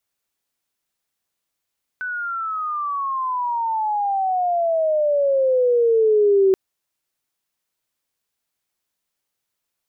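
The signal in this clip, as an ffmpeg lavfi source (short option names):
-f lavfi -i "aevalsrc='pow(10,(-11.5+12.5*(t/4.53-1))/20)*sin(2*PI*1510*4.53/(-24*log(2)/12)*(exp(-24*log(2)/12*t/4.53)-1))':d=4.53:s=44100"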